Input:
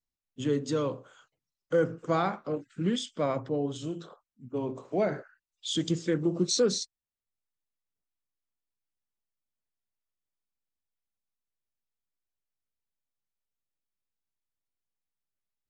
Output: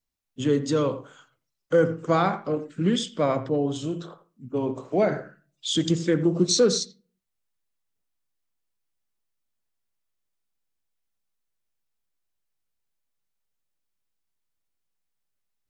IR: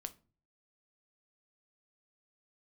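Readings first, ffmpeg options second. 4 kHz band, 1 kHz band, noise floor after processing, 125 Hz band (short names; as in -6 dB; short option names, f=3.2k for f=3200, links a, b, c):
+5.5 dB, +5.5 dB, -80 dBFS, +6.0 dB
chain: -filter_complex "[0:a]asplit=2[a][b];[1:a]atrim=start_sample=2205,lowpass=2.8k,adelay=85[c];[b][c]afir=irnorm=-1:irlink=0,volume=-10dB[d];[a][d]amix=inputs=2:normalize=0,volume=5.5dB"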